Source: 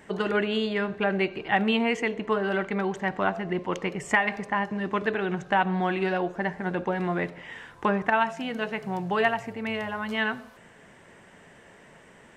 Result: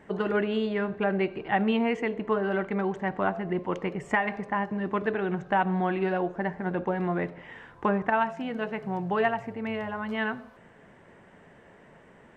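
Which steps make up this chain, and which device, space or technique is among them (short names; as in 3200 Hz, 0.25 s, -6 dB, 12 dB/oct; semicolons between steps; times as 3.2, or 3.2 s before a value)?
through cloth (high shelf 2900 Hz -14.5 dB)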